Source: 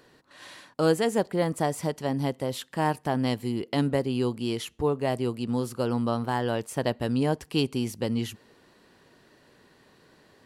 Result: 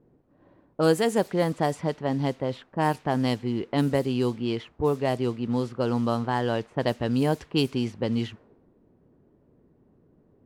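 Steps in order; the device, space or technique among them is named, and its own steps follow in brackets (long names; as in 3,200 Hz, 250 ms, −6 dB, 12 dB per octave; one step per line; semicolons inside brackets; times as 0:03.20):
cassette deck with a dynamic noise filter (white noise bed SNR 24 dB; low-pass that shuts in the quiet parts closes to 300 Hz, open at −20.5 dBFS)
level +1.5 dB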